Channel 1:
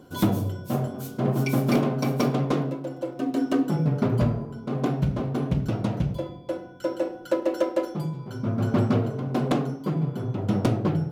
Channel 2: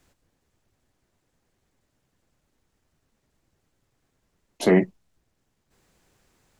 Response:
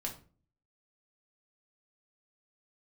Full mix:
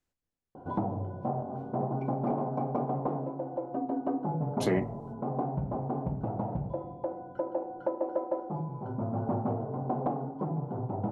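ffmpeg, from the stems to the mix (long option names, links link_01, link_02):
-filter_complex "[0:a]lowpass=frequency=830:width_type=q:width=4.8,adelay=550,volume=-0.5dB[link_01];[1:a]agate=range=-25dB:threshold=-56dB:ratio=16:detection=peak,volume=2.5dB,asplit=2[link_02][link_03];[link_03]volume=-13dB[link_04];[2:a]atrim=start_sample=2205[link_05];[link_04][link_05]afir=irnorm=-1:irlink=0[link_06];[link_01][link_02][link_06]amix=inputs=3:normalize=0,acompressor=threshold=-36dB:ratio=2"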